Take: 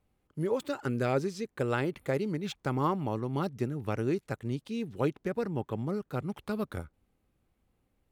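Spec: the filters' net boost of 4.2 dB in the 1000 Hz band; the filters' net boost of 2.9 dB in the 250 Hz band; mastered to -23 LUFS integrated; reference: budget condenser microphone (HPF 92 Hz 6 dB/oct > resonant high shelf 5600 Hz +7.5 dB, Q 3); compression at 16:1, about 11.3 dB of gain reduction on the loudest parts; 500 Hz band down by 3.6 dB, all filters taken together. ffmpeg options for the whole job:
-af "equalizer=f=250:t=o:g=6.5,equalizer=f=500:t=o:g=-8.5,equalizer=f=1k:t=o:g=7.5,acompressor=threshold=-30dB:ratio=16,highpass=f=92:p=1,highshelf=f=5.6k:t=q:w=3:g=7.5,volume=14dB"

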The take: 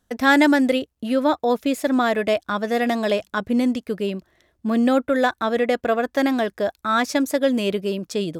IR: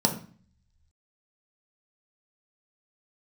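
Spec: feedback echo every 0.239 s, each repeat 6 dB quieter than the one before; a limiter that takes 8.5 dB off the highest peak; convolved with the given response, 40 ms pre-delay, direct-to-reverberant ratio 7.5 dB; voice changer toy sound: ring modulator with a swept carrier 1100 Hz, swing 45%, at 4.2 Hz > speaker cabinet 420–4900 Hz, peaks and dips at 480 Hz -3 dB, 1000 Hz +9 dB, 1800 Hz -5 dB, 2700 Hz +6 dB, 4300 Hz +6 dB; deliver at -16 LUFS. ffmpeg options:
-filter_complex "[0:a]alimiter=limit=-13.5dB:level=0:latency=1,aecho=1:1:239|478|717|956|1195|1434:0.501|0.251|0.125|0.0626|0.0313|0.0157,asplit=2[a][b];[1:a]atrim=start_sample=2205,adelay=40[c];[b][c]afir=irnorm=-1:irlink=0,volume=-19dB[d];[a][d]amix=inputs=2:normalize=0,aeval=exprs='val(0)*sin(2*PI*1100*n/s+1100*0.45/4.2*sin(2*PI*4.2*n/s))':c=same,highpass=420,equalizer=f=480:t=q:w=4:g=-3,equalizer=f=1k:t=q:w=4:g=9,equalizer=f=1.8k:t=q:w=4:g=-5,equalizer=f=2.7k:t=q:w=4:g=6,equalizer=f=4.3k:t=q:w=4:g=6,lowpass=f=4.9k:w=0.5412,lowpass=f=4.9k:w=1.3066,volume=3.5dB"

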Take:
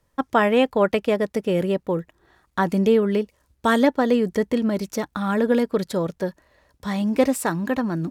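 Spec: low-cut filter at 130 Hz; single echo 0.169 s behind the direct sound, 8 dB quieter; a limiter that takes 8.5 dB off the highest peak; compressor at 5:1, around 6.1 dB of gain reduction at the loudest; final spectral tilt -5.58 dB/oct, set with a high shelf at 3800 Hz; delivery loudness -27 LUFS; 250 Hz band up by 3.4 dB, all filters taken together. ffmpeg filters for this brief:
-af "highpass=130,equalizer=f=250:t=o:g=4.5,highshelf=f=3.8k:g=-4,acompressor=threshold=-17dB:ratio=5,alimiter=limit=-15dB:level=0:latency=1,aecho=1:1:169:0.398,volume=-2dB"

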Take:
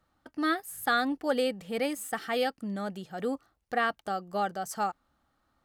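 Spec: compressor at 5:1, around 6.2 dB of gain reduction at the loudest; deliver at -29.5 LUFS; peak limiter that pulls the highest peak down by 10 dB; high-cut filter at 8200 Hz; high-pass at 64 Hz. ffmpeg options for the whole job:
-af "highpass=64,lowpass=8.2k,acompressor=threshold=-29dB:ratio=5,volume=9.5dB,alimiter=limit=-19.5dB:level=0:latency=1"

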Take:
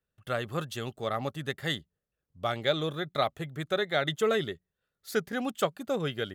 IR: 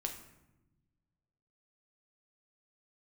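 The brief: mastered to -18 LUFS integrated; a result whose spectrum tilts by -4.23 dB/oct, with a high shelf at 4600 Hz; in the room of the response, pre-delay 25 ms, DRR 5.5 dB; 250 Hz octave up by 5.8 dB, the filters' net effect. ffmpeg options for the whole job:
-filter_complex "[0:a]equalizer=f=250:t=o:g=7.5,highshelf=f=4.6k:g=3,asplit=2[a][b];[1:a]atrim=start_sample=2205,adelay=25[c];[b][c]afir=irnorm=-1:irlink=0,volume=-5.5dB[d];[a][d]amix=inputs=2:normalize=0,volume=10dB"

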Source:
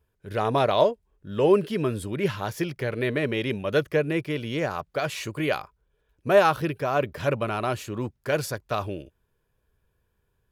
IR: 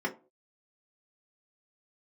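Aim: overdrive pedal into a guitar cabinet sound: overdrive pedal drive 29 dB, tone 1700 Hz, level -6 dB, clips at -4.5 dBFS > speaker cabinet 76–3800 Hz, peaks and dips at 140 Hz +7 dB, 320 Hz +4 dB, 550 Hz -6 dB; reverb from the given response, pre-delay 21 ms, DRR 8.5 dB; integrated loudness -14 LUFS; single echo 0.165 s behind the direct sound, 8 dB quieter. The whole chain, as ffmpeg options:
-filter_complex "[0:a]aecho=1:1:165:0.398,asplit=2[a][b];[1:a]atrim=start_sample=2205,adelay=21[c];[b][c]afir=irnorm=-1:irlink=0,volume=-16dB[d];[a][d]amix=inputs=2:normalize=0,asplit=2[e][f];[f]highpass=f=720:p=1,volume=29dB,asoftclip=type=tanh:threshold=-4.5dB[g];[e][g]amix=inputs=2:normalize=0,lowpass=f=1.7k:p=1,volume=-6dB,highpass=76,equalizer=f=140:t=q:w=4:g=7,equalizer=f=320:t=q:w=4:g=4,equalizer=f=550:t=q:w=4:g=-6,lowpass=f=3.8k:w=0.5412,lowpass=f=3.8k:w=1.3066,volume=1.5dB"

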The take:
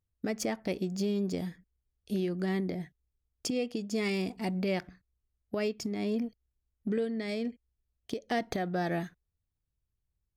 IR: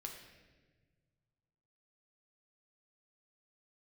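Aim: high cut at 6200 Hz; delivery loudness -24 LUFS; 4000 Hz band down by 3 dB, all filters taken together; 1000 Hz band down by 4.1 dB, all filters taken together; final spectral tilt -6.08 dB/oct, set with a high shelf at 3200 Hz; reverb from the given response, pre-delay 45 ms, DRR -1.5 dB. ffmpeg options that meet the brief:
-filter_complex "[0:a]lowpass=6.2k,equalizer=f=1k:t=o:g=-7.5,highshelf=f=3.2k:g=6.5,equalizer=f=4k:t=o:g=-8,asplit=2[a][b];[1:a]atrim=start_sample=2205,adelay=45[c];[b][c]afir=irnorm=-1:irlink=0,volume=4.5dB[d];[a][d]amix=inputs=2:normalize=0,volume=7dB"

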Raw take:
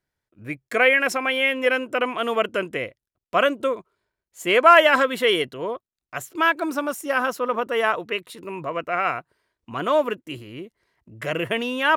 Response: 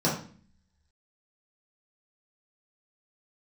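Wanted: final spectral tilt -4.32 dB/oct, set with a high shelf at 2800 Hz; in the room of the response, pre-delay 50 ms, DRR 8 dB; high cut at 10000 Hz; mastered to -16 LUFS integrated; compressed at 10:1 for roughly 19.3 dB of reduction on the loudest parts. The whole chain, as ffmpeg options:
-filter_complex "[0:a]lowpass=10k,highshelf=f=2.8k:g=3.5,acompressor=threshold=-27dB:ratio=10,asplit=2[a][b];[1:a]atrim=start_sample=2205,adelay=50[c];[b][c]afir=irnorm=-1:irlink=0,volume=-20.5dB[d];[a][d]amix=inputs=2:normalize=0,volume=15dB"

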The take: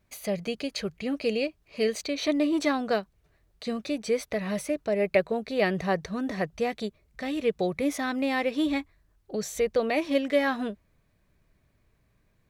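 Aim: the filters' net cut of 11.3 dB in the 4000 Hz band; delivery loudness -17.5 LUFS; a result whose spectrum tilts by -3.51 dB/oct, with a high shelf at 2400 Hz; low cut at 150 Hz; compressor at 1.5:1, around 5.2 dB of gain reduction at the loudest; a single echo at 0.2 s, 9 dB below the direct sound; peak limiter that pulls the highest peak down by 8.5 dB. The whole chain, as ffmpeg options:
-af "highpass=150,highshelf=f=2.4k:g=-8,equalizer=f=4k:t=o:g=-7.5,acompressor=threshold=-33dB:ratio=1.5,alimiter=limit=-24dB:level=0:latency=1,aecho=1:1:200:0.355,volume=16.5dB"

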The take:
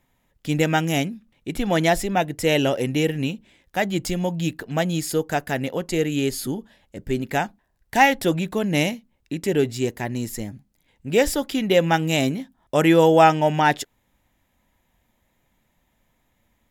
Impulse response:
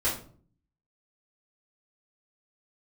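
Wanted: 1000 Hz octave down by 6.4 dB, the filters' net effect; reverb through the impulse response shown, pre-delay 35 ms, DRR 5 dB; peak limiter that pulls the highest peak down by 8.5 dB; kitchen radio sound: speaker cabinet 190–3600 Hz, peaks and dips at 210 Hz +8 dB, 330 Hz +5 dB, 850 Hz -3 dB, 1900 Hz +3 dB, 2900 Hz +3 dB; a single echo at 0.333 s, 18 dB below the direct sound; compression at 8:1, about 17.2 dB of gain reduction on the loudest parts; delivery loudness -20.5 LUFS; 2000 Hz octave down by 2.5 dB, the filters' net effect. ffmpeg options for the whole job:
-filter_complex "[0:a]equalizer=f=1k:t=o:g=-6,equalizer=f=2k:t=o:g=-4,acompressor=threshold=-31dB:ratio=8,alimiter=level_in=1.5dB:limit=-24dB:level=0:latency=1,volume=-1.5dB,aecho=1:1:333:0.126,asplit=2[a][b];[1:a]atrim=start_sample=2205,adelay=35[c];[b][c]afir=irnorm=-1:irlink=0,volume=-14.5dB[d];[a][d]amix=inputs=2:normalize=0,highpass=190,equalizer=f=210:t=q:w=4:g=8,equalizer=f=330:t=q:w=4:g=5,equalizer=f=850:t=q:w=4:g=-3,equalizer=f=1.9k:t=q:w=4:g=3,equalizer=f=2.9k:t=q:w=4:g=3,lowpass=f=3.6k:w=0.5412,lowpass=f=3.6k:w=1.3066,volume=14dB"

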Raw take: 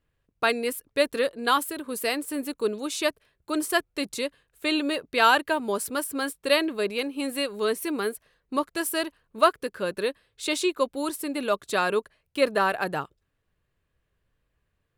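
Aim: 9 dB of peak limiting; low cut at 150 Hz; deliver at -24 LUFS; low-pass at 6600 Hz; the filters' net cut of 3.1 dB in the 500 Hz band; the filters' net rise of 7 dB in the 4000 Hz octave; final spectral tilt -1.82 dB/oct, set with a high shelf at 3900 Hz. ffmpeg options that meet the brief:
-af "highpass=150,lowpass=6.6k,equalizer=f=500:t=o:g=-4,highshelf=f=3.9k:g=3.5,equalizer=f=4k:t=o:g=7,volume=4dB,alimiter=limit=-9.5dB:level=0:latency=1"

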